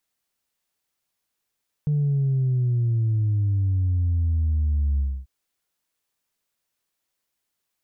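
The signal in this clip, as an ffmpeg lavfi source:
-f lavfi -i "aevalsrc='0.112*clip((3.39-t)/0.27,0,1)*tanh(1*sin(2*PI*150*3.39/log(65/150)*(exp(log(65/150)*t/3.39)-1)))/tanh(1)':d=3.39:s=44100"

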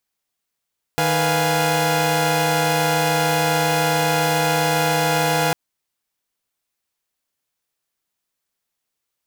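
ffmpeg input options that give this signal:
-f lavfi -i "aevalsrc='0.1*((2*mod(155.56*t,1)-1)+(2*mod(493.88*t,1)-1)+(2*mod(698.46*t,1)-1)+(2*mod(830.61*t,1)-1))':d=4.55:s=44100"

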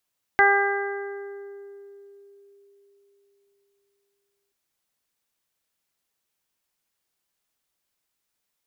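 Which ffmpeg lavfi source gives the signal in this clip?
-f lavfi -i "aevalsrc='0.0794*pow(10,-3*t/4.33)*sin(2*PI*400*t)+0.141*pow(10,-3*t/1.68)*sin(2*PI*800*t)+0.0631*pow(10,-3*t/1.73)*sin(2*PI*1200*t)+0.158*pow(10,-3*t/1.69)*sin(2*PI*1600*t)+0.112*pow(10,-3*t/1.51)*sin(2*PI*2000*t)':d=4.13:s=44100"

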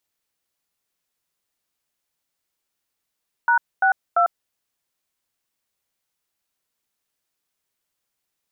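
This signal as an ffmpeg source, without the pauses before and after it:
-f lavfi -i "aevalsrc='0.15*clip(min(mod(t,0.342),0.098-mod(t,0.342))/0.002,0,1)*(eq(floor(t/0.342),0)*(sin(2*PI*941*mod(t,0.342))+sin(2*PI*1477*mod(t,0.342)))+eq(floor(t/0.342),1)*(sin(2*PI*770*mod(t,0.342))+sin(2*PI*1477*mod(t,0.342)))+eq(floor(t/0.342),2)*(sin(2*PI*697*mod(t,0.342))+sin(2*PI*1336*mod(t,0.342))))':d=1.026:s=44100"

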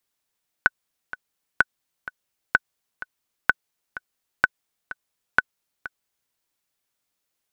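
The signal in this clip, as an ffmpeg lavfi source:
-f lavfi -i "aevalsrc='pow(10,(-2-16.5*gte(mod(t,2*60/127),60/127))/20)*sin(2*PI*1500*mod(t,60/127))*exp(-6.91*mod(t,60/127)/0.03)':d=5.66:s=44100"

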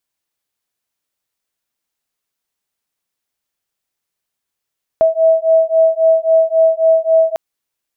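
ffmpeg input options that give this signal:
-f lavfi -i "aevalsrc='0.251*(sin(2*PI*647*t)+sin(2*PI*650.7*t))':d=2.35:s=44100"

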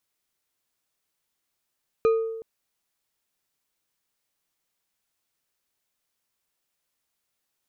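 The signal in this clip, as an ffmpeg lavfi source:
-f lavfi -i "aevalsrc='0.178*pow(10,-3*t/1.06)*sin(2*PI*450*t)+0.0501*pow(10,-3*t/0.521)*sin(2*PI*1240.7*t)+0.0141*pow(10,-3*t/0.325)*sin(2*PI*2431.8*t)+0.00398*pow(10,-3*t/0.229)*sin(2*PI*4019.8*t)+0.00112*pow(10,-3*t/0.173)*sin(2*PI*6003*t)':d=0.37:s=44100"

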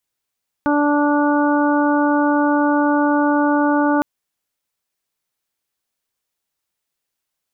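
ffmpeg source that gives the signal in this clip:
-f lavfi -i "aevalsrc='0.168*sin(2*PI*292*t)+0.0841*sin(2*PI*584*t)+0.0944*sin(2*PI*876*t)+0.0531*sin(2*PI*1168*t)+0.0596*sin(2*PI*1460*t)':d=3.36:s=44100"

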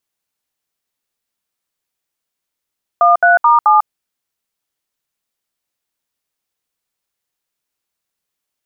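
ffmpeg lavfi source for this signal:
-f lavfi -i "aevalsrc='0.355*clip(min(mod(t,0.216),0.147-mod(t,0.216))/0.002,0,1)*(eq(floor(t/0.216),0)*(sin(2*PI*697*mod(t,0.216))+sin(2*PI*1209*mod(t,0.216)))+eq(floor(t/0.216),1)*(sin(2*PI*697*mod(t,0.216))+sin(2*PI*1477*mod(t,0.216)))+eq(floor(t/0.216),2)*(sin(2*PI*941*mod(t,0.216))+sin(2*PI*1209*mod(t,0.216)))+eq(floor(t/0.216),3)*(sin(2*PI*852*mod(t,0.216))+sin(2*PI*1209*mod(t,0.216))))':d=0.864:s=44100"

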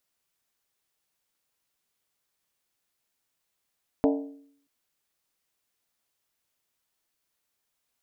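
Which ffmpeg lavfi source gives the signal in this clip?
-f lavfi -i "aevalsrc='0.126*pow(10,-3*t/0.66)*sin(2*PI*281*t)+0.0841*pow(10,-3*t/0.523)*sin(2*PI*447.9*t)+0.0562*pow(10,-3*t/0.452)*sin(2*PI*600.2*t)+0.0376*pow(10,-3*t/0.436)*sin(2*PI*645.2*t)+0.0251*pow(10,-3*t/0.405)*sin(2*PI*745.5*t)+0.0168*pow(10,-3*t/0.386)*sin(2*PI*820*t)+0.0112*pow(10,-3*t/0.372)*sin(2*PI*886.8*t)+0.0075*pow(10,-3*t/0.353)*sin(2*PI*983.8*t)':d=0.63:s=44100"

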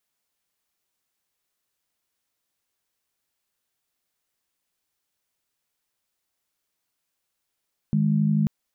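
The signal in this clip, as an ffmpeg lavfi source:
-f lavfi -i "aevalsrc='0.0891*(sin(2*PI*155.56*t)+sin(2*PI*207.65*t))':d=0.54:s=44100"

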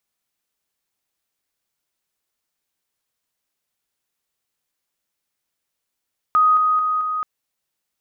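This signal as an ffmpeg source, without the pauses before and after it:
-f lavfi -i "aevalsrc='pow(10,(-11.5-3*floor(t/0.22))/20)*sin(2*PI*1250*t)':d=0.88:s=44100"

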